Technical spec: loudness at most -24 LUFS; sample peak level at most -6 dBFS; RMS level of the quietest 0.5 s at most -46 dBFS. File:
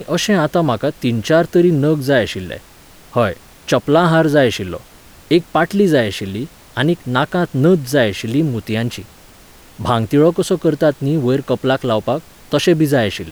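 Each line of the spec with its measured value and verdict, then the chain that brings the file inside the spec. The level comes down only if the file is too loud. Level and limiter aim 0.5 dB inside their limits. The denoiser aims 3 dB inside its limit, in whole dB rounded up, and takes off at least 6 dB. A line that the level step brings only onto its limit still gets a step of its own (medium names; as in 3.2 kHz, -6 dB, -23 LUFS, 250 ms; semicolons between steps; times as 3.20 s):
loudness -16.0 LUFS: fail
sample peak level -2.0 dBFS: fail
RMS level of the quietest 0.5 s -43 dBFS: fail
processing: trim -8.5 dB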